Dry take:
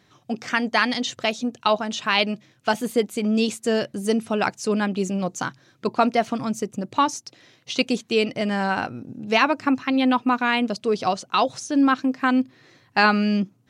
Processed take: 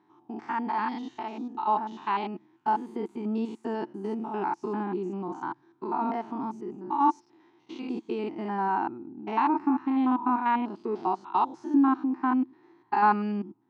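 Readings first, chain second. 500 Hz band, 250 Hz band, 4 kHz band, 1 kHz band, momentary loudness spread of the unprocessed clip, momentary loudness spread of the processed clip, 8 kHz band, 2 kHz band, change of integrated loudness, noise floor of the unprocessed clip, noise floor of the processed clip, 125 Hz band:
−10.5 dB, −5.5 dB, −23.0 dB, −2.0 dB, 8 LU, 12 LU, below −25 dB, −14.5 dB, −6.0 dB, −61 dBFS, −64 dBFS, −10.0 dB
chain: spectrum averaged block by block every 100 ms
pair of resonant band-passes 550 Hz, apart 1.4 octaves
level +7.5 dB

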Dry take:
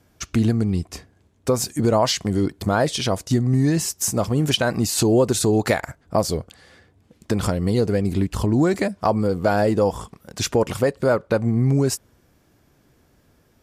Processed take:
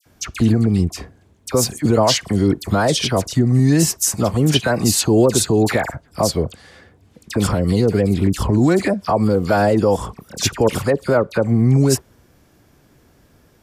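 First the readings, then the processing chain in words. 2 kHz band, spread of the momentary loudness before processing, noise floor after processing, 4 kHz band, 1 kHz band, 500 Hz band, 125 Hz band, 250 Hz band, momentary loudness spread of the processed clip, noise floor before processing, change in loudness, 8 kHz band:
+3.5 dB, 7 LU, −55 dBFS, +4.0 dB, +3.0 dB, +3.0 dB, +4.5 dB, +4.0 dB, 8 LU, −60 dBFS, +4.0 dB, +5.0 dB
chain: brickwall limiter −11.5 dBFS, peak gain reduction 6 dB
all-pass dispersion lows, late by 59 ms, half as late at 1,900 Hz
level +5.5 dB

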